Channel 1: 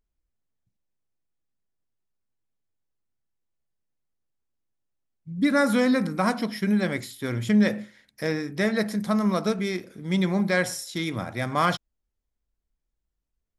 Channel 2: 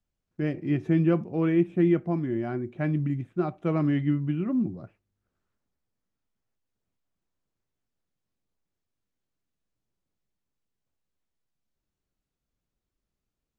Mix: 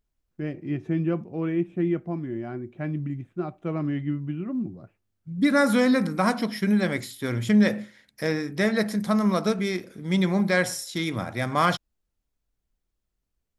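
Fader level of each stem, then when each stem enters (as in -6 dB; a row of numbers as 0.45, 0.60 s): +1.0, -3.0 dB; 0.00, 0.00 s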